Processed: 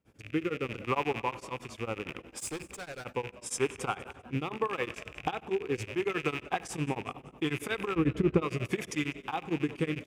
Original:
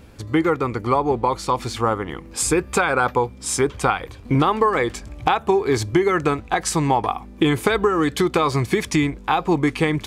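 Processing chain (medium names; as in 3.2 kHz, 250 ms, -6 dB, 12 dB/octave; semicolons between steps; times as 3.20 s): rattle on loud lows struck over -32 dBFS, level -14 dBFS; high-pass 90 Hz 12 dB/octave; 7.95–8.42 s: RIAA curve playback; gate with hold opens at -39 dBFS; peaking EQ 4.2 kHz -9.5 dB 0.24 oct; 2.30–3.05 s: overload inside the chain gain 23.5 dB; rotary cabinet horn 0.75 Hz; frequency-shifting echo 197 ms, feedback 38%, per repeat +110 Hz, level -19 dB; reverberation RT60 1.7 s, pre-delay 28 ms, DRR 15.5 dB; tremolo of two beating tones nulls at 11 Hz; trim -8.5 dB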